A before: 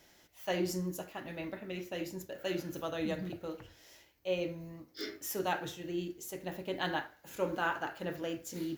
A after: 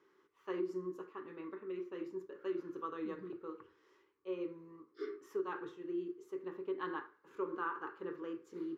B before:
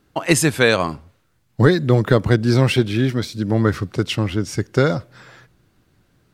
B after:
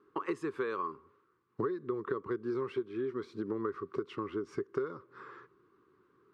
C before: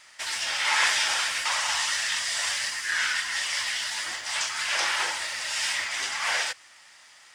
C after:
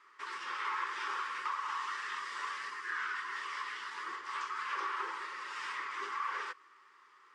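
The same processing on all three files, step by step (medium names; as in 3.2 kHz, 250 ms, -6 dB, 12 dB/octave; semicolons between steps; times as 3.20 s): two resonant band-passes 670 Hz, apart 1.5 oct; compression 6:1, threshold -39 dBFS; trim +6 dB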